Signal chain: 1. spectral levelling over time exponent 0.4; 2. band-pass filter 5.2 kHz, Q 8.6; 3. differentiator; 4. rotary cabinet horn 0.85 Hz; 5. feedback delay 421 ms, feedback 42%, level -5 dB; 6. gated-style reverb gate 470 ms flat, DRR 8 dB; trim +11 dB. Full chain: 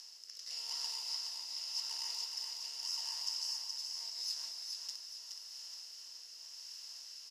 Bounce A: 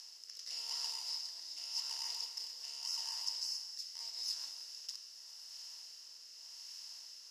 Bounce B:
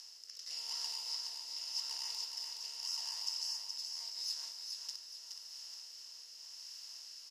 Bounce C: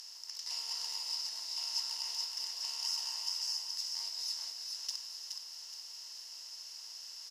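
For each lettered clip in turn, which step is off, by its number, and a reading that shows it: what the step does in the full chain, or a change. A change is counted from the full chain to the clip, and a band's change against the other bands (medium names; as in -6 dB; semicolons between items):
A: 5, echo-to-direct -2.0 dB to -8.0 dB; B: 6, echo-to-direct -2.0 dB to -4.0 dB; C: 4, loudness change +2.5 LU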